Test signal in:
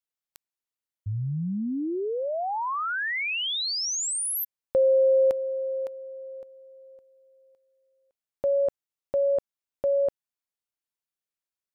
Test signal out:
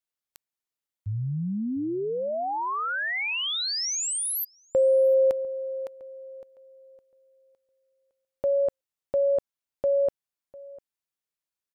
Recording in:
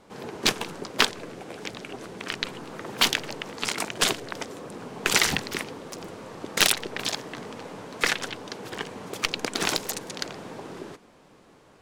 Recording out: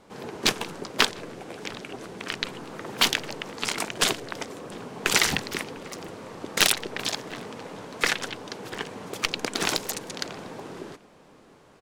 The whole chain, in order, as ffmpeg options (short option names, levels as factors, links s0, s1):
-filter_complex "[0:a]asplit=2[s0][s1];[s1]adelay=699.7,volume=0.1,highshelf=f=4000:g=-15.7[s2];[s0][s2]amix=inputs=2:normalize=0"